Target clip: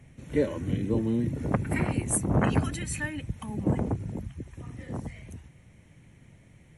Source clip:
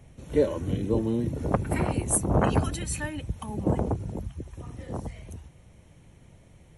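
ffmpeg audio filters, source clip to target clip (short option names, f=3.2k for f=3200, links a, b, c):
-af "equalizer=f=125:t=o:w=1:g=6,equalizer=f=250:t=o:w=1:g=6,equalizer=f=2k:t=o:w=1:g=10,equalizer=f=8k:t=o:w=1:g=4,volume=-6dB"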